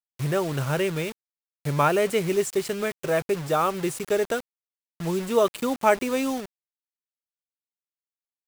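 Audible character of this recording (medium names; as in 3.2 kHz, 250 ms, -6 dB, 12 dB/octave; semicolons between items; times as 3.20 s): a quantiser's noise floor 6-bit, dither none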